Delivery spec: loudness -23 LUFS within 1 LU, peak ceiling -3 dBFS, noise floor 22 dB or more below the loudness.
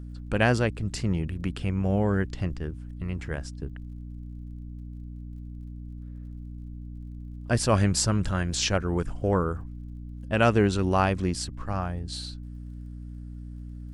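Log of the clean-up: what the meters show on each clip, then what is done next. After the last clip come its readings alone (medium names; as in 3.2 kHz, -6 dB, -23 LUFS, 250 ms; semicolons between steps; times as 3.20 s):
tick rate 31 per s; hum 60 Hz; highest harmonic 300 Hz; hum level -36 dBFS; loudness -27.0 LUFS; peak level -7.5 dBFS; loudness target -23.0 LUFS
-> de-click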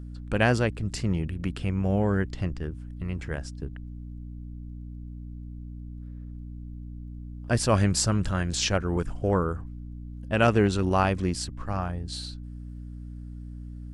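tick rate 0 per s; hum 60 Hz; highest harmonic 300 Hz; hum level -36 dBFS
-> hum notches 60/120/180/240/300 Hz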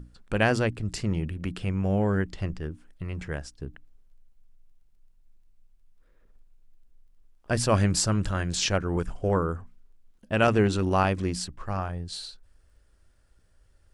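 hum not found; loudness -27.0 LUFS; peak level -8.0 dBFS; loudness target -23.0 LUFS
-> trim +4 dB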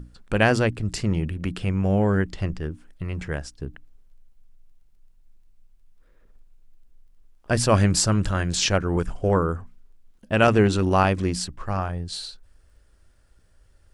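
loudness -23.5 LUFS; peak level -4.0 dBFS; noise floor -58 dBFS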